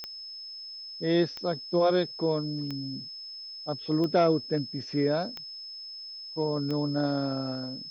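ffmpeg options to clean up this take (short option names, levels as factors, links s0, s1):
-af "adeclick=t=4,bandreject=f=5200:w=30,agate=range=0.0891:threshold=0.02"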